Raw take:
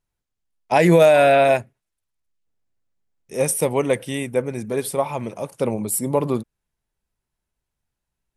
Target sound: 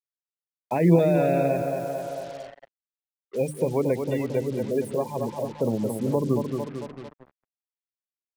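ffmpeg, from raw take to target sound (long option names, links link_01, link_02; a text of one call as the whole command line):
ffmpeg -i in.wav -filter_complex "[0:a]afftfilt=real='re*gte(hypot(re,im),0.0891)':imag='im*gte(hypot(re,im),0.0891)':win_size=1024:overlap=0.75,bandreject=frequency=50:width_type=h:width=6,bandreject=frequency=100:width_type=h:width=6,bandreject=frequency=150:width_type=h:width=6,bandreject=frequency=200:width_type=h:width=6,bandreject=frequency=250:width_type=h:width=6,bandreject=frequency=300:width_type=h:width=6,bandreject=frequency=350:width_type=h:width=6,acrossover=split=2000[link_01][link_02];[link_02]acompressor=threshold=-46dB:ratio=5[link_03];[link_01][link_03]amix=inputs=2:normalize=0,highpass=frequency=65:poles=1,asplit=2[link_04][link_05];[link_05]adelay=224,lowpass=frequency=2900:poles=1,volume=-7dB,asplit=2[link_06][link_07];[link_07]adelay=224,lowpass=frequency=2900:poles=1,volume=0.53,asplit=2[link_08][link_09];[link_09]adelay=224,lowpass=frequency=2900:poles=1,volume=0.53,asplit=2[link_10][link_11];[link_11]adelay=224,lowpass=frequency=2900:poles=1,volume=0.53,asplit=2[link_12][link_13];[link_13]adelay=224,lowpass=frequency=2900:poles=1,volume=0.53,asplit=2[link_14][link_15];[link_15]adelay=224,lowpass=frequency=2900:poles=1,volume=0.53[link_16];[link_06][link_08][link_10][link_12][link_14][link_16]amix=inputs=6:normalize=0[link_17];[link_04][link_17]amix=inputs=2:normalize=0,agate=range=-7dB:threshold=-42dB:ratio=16:detection=peak,acrusher=bits=6:mix=0:aa=0.5,acrossover=split=410|3000[link_18][link_19][link_20];[link_19]acompressor=threshold=-29dB:ratio=6[link_21];[link_18][link_21][link_20]amix=inputs=3:normalize=0" out.wav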